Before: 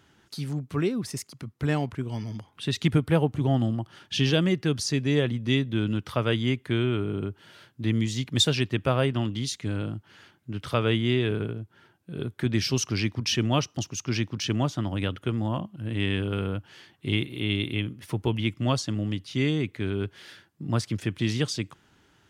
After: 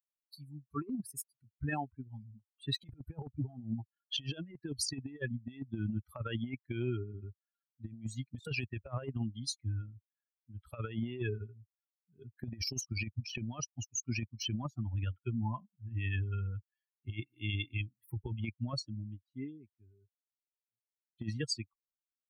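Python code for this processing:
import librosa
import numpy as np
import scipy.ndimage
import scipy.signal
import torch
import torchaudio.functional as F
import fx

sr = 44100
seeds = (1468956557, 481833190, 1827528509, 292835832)

y = fx.studio_fade_out(x, sr, start_s=18.15, length_s=3.03)
y = fx.bin_expand(y, sr, power=3.0)
y = fx.over_compress(y, sr, threshold_db=-37.0, ratio=-0.5)
y = F.gain(torch.from_numpy(y), 1.0).numpy()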